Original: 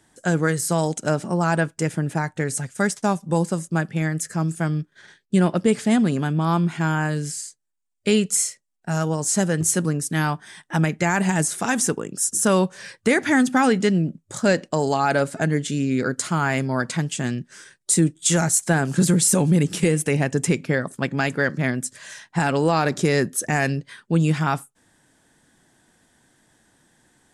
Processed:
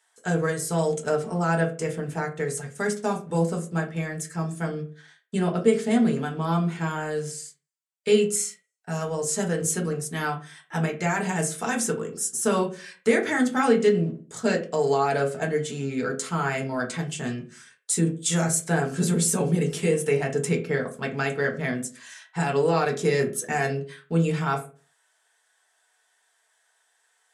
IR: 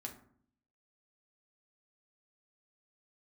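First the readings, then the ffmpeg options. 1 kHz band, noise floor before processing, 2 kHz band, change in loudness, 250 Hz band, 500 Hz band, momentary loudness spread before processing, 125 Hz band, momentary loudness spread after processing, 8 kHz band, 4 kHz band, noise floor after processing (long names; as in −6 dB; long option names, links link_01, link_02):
−3.5 dB, −69 dBFS, −4.5 dB, −4.0 dB, −5.0 dB, 0.0 dB, 8 LU, −5.5 dB, 9 LU, −5.5 dB, −4.5 dB, −69 dBFS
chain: -filter_complex "[0:a]lowshelf=frequency=120:gain=-10,acrossover=split=660|5600[link_01][link_02][link_03];[link_01]aeval=exprs='sgn(val(0))*max(abs(val(0))-0.00335,0)':channel_layout=same[link_04];[link_04][link_02][link_03]amix=inputs=3:normalize=0[link_05];[1:a]atrim=start_sample=2205,asetrate=79380,aresample=44100[link_06];[link_05][link_06]afir=irnorm=-1:irlink=0,volume=4dB"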